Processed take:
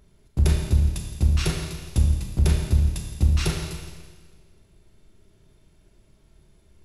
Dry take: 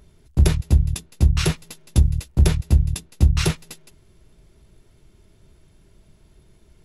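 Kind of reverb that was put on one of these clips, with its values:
four-comb reverb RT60 1.5 s, combs from 28 ms, DRR 1.5 dB
level −5.5 dB

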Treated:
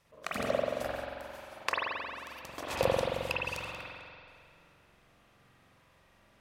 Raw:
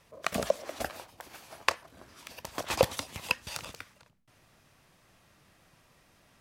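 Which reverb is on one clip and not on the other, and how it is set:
spring reverb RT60 2.2 s, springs 44 ms, chirp 35 ms, DRR −6.5 dB
level −7.5 dB

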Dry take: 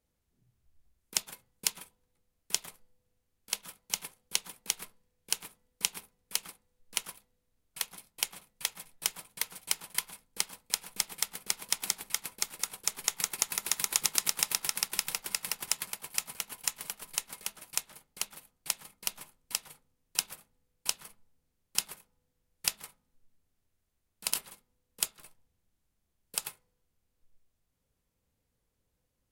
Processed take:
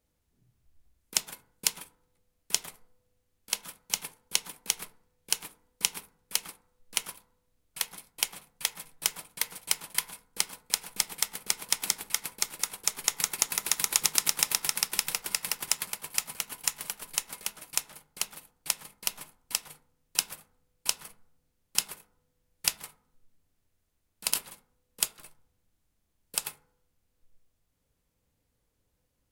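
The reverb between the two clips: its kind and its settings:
feedback delay network reverb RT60 0.67 s, high-frequency decay 0.35×, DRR 14.5 dB
level +3 dB

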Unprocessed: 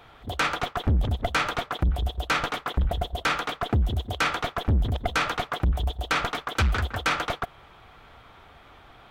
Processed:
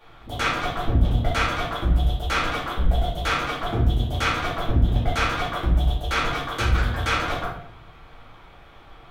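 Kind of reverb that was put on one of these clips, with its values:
rectangular room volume 110 cubic metres, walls mixed, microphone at 2.4 metres
level −7.5 dB

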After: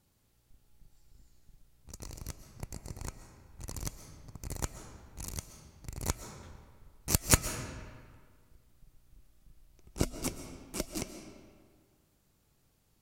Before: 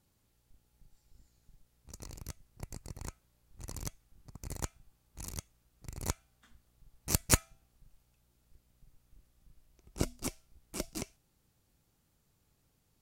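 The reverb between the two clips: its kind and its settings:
comb and all-pass reverb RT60 1.8 s, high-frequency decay 0.7×, pre-delay 90 ms, DRR 8.5 dB
level +2 dB

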